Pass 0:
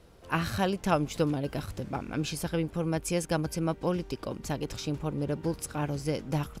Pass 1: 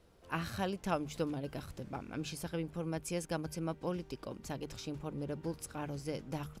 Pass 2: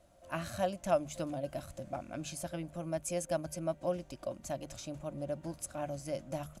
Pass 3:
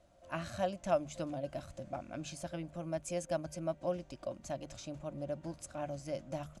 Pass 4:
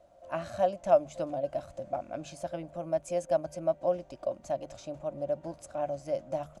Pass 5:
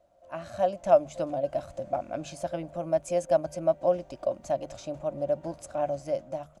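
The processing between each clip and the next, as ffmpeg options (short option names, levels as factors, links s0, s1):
-af "bandreject=f=50:t=h:w=6,bandreject=f=100:t=h:w=6,bandreject=f=150:t=h:w=6,volume=0.398"
-af "superequalizer=7b=0.316:8b=3.55:15b=2.24:16b=2,volume=0.794"
-af "lowpass=7400,volume=0.841"
-af "equalizer=f=640:t=o:w=1.4:g=11,volume=0.794"
-af "dynaudnorm=f=100:g=11:m=2.82,volume=0.562"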